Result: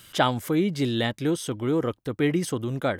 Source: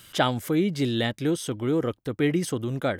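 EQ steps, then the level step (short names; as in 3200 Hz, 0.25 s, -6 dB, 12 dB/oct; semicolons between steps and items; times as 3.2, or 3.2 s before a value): dynamic EQ 1000 Hz, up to +4 dB, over -42 dBFS, Q 2.4; 0.0 dB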